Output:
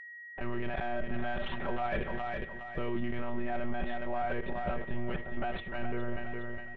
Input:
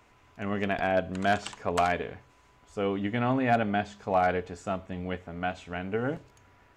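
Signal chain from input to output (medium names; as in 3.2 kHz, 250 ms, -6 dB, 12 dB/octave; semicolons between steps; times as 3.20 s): monotone LPC vocoder at 8 kHz 120 Hz; bass shelf 150 Hz +4.5 dB; comb 5.2 ms, depth 67%; in parallel at -5 dB: saturation -27.5 dBFS, distortion -6 dB; on the sum: gate -45 dBFS, range -39 dB; level held to a coarse grid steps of 14 dB; feedback delay 413 ms, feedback 36%, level -10 dB; whistle 1.9 kHz -47 dBFS; peak limiter -26 dBFS, peak gain reduction 9.5 dB; low-pass that closes with the level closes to 340 Hz, closed at -21 dBFS; trim +2.5 dB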